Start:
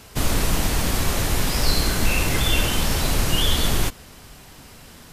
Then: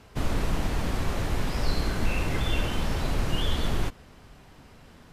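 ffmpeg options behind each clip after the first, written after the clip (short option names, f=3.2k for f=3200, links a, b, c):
-af "lowpass=f=1.9k:p=1,volume=-5dB"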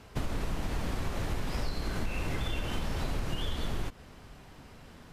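-af "acompressor=threshold=-28dB:ratio=6"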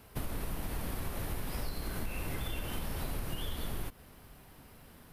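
-af "aexciter=amount=5.4:drive=5.8:freq=9.5k,volume=-4.5dB"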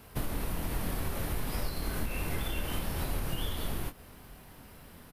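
-filter_complex "[0:a]asplit=2[a][b];[b]adelay=24,volume=-7.5dB[c];[a][c]amix=inputs=2:normalize=0,volume=3dB"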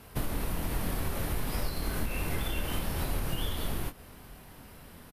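-af "aresample=32000,aresample=44100,volume=1.5dB"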